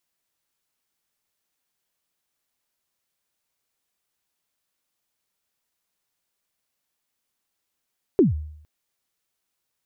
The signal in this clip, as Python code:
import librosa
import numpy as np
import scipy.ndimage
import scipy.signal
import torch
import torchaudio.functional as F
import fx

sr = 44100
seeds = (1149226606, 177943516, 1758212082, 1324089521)

y = fx.drum_kick(sr, seeds[0], length_s=0.46, level_db=-10, start_hz=430.0, end_hz=76.0, sweep_ms=146.0, decay_s=0.69, click=False)